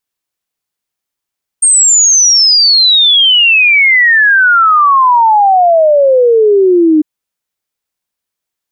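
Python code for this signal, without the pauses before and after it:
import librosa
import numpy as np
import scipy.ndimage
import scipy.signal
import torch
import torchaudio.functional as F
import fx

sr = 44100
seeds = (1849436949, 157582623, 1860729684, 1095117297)

y = fx.ess(sr, length_s=5.4, from_hz=8700.0, to_hz=300.0, level_db=-4.0)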